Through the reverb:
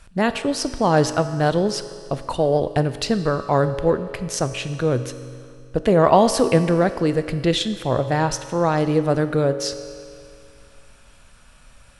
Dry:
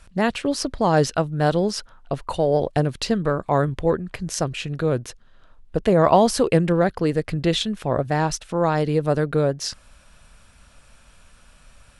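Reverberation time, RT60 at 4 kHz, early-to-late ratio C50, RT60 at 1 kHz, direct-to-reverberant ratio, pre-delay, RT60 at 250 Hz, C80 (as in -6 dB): 2.3 s, 2.1 s, 11.5 dB, 2.3 s, 10.0 dB, 3 ms, 2.3 s, 12.0 dB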